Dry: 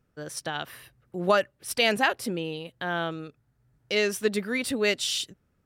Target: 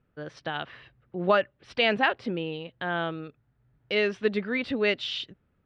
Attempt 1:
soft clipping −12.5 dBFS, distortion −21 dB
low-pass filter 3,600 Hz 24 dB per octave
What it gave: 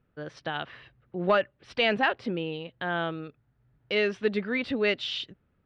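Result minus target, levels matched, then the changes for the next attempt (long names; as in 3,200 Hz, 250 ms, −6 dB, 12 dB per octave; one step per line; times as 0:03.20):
soft clipping: distortion +20 dB
change: soft clipping −1.5 dBFS, distortion −41 dB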